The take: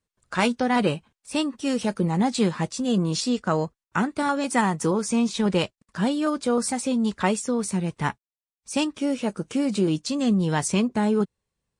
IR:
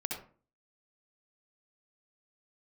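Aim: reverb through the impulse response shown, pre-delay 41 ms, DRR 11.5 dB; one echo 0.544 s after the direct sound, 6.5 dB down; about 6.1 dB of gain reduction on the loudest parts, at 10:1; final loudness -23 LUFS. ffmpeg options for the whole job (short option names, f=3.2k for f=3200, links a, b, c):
-filter_complex "[0:a]acompressor=threshold=-23dB:ratio=10,aecho=1:1:544:0.473,asplit=2[a][b];[1:a]atrim=start_sample=2205,adelay=41[c];[b][c]afir=irnorm=-1:irlink=0,volume=-14dB[d];[a][d]amix=inputs=2:normalize=0,volume=5dB"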